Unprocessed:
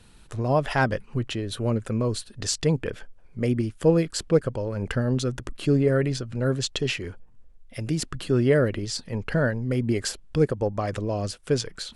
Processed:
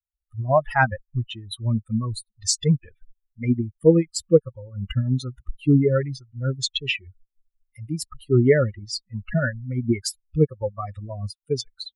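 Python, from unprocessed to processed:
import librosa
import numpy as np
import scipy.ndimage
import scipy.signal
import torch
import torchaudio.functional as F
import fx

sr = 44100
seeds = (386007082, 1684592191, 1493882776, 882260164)

y = fx.bin_expand(x, sr, power=3.0)
y = y * 10.0 ** (8.5 / 20.0)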